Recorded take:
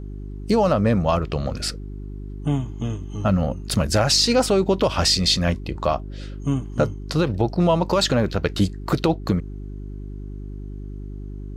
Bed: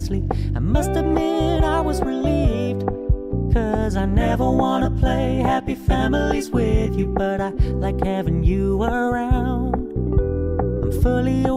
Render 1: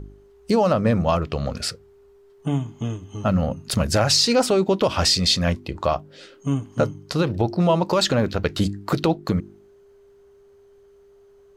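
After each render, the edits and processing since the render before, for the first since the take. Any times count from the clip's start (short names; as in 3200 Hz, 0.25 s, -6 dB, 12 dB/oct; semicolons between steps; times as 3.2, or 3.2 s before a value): de-hum 50 Hz, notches 7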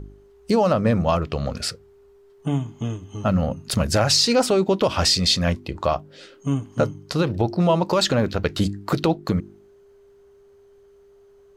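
nothing audible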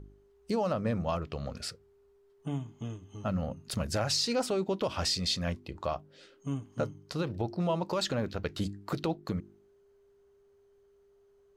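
gain -11.5 dB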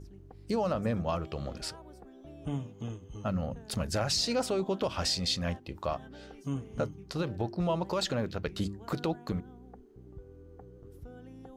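add bed -30 dB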